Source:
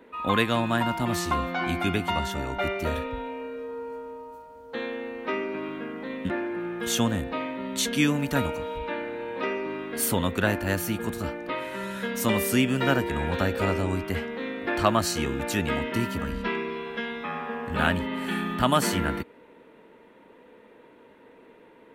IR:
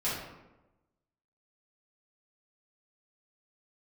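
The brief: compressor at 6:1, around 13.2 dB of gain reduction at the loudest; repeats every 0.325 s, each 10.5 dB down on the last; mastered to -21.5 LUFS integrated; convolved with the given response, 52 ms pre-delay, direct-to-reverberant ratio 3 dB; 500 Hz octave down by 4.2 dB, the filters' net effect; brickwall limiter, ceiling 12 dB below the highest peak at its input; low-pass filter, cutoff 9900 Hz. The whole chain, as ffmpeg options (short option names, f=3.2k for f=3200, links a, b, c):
-filter_complex "[0:a]lowpass=9.9k,equalizer=f=500:t=o:g=-5.5,acompressor=threshold=-33dB:ratio=6,alimiter=level_in=9dB:limit=-24dB:level=0:latency=1,volume=-9dB,aecho=1:1:325|650|975:0.299|0.0896|0.0269,asplit=2[a][b];[1:a]atrim=start_sample=2205,adelay=52[c];[b][c]afir=irnorm=-1:irlink=0,volume=-10.5dB[d];[a][d]amix=inputs=2:normalize=0,volume=18dB"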